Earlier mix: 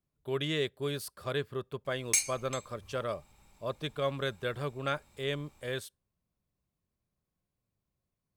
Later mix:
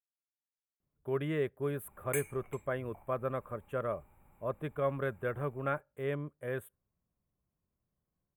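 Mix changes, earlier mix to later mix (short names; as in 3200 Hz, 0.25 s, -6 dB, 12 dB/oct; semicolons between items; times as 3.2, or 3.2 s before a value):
speech: entry +0.80 s; master: add Butterworth band-stop 5000 Hz, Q 0.51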